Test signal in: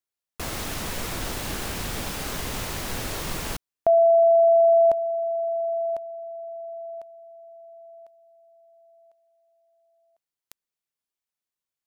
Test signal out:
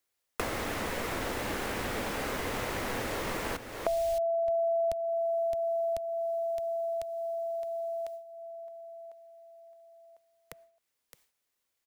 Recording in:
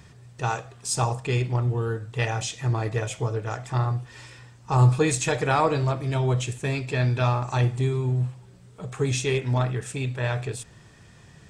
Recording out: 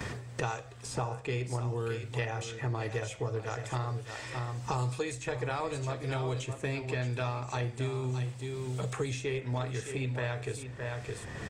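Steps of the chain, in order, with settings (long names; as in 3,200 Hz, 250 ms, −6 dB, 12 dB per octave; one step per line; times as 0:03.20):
thirty-one-band graphic EQ 160 Hz −10 dB, 500 Hz +4 dB, 2,000 Hz +3 dB
on a send: single-tap delay 616 ms −13 dB
on the sum: noise gate with hold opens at −41 dBFS, closes at −45 dBFS, hold 71 ms, range −13 dB
multiband upward and downward compressor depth 100%
level −9 dB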